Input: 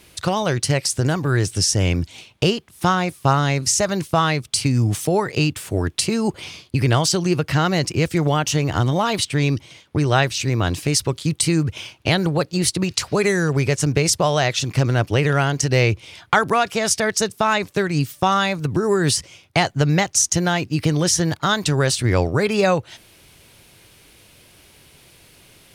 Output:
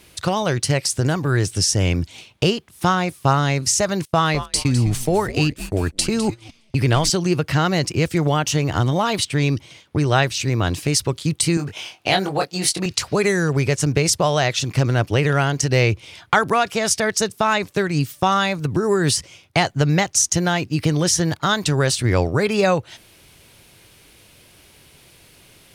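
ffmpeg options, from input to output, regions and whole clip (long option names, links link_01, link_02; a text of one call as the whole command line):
ffmpeg -i in.wav -filter_complex "[0:a]asettb=1/sr,asplit=3[link_01][link_02][link_03];[link_01]atrim=end=4.054[link_04];[link_02]atrim=start=4.05:end=7.1,asetpts=PTS-STARTPTS,afade=type=in:duration=0.004:curve=qsin,afade=type=out:start_time=3.046:duration=0.004:curve=qsin,asplit=5[link_05][link_06][link_07][link_08][link_09];[link_06]adelay=206,afreqshift=-110,volume=-11.5dB[link_10];[link_07]adelay=412,afreqshift=-220,volume=-20.6dB[link_11];[link_08]adelay=618,afreqshift=-330,volume=-29.7dB[link_12];[link_09]adelay=824,afreqshift=-440,volume=-38.9dB[link_13];[link_05][link_10][link_11][link_12][link_13]amix=inputs=5:normalize=0,atrim=end_sample=134505,agate=range=-19dB:threshold=-28dB:ratio=16:release=100:detection=peak[link_14];[link_03]atrim=start=7.096[link_15];[link_04][link_14]acrossfade=duration=0.004:curve1=hsin:curve2=qsin[link_16];[link_16][link_15]acrossfade=duration=0.004:curve1=qsin:curve2=hsin,asettb=1/sr,asplit=3[link_17][link_18][link_19];[link_17]atrim=end=11.574[link_20];[link_18]atrim=start=11.57:end=12.86,asetpts=PTS-STARTPTS,afade=type=in:duration=0.004:curve=qsin,afade=type=out:start_time=1.286:duration=0.004:curve=qsin,highpass=frequency=410:poles=1,equalizer=frequency=740:width_type=o:width=0.24:gain=8.5,asplit=2[link_21][link_22];[link_22]adelay=21,volume=-4dB[link_23];[link_21][link_23]amix=inputs=2:normalize=0,atrim=end_sample=56889[link_24];[link_19]atrim=start=12.856[link_25];[link_20][link_24]acrossfade=duration=0.004:curve1=hsin:curve2=qsin[link_26];[link_26][link_25]acrossfade=duration=0.004:curve1=qsin:curve2=hsin" out.wav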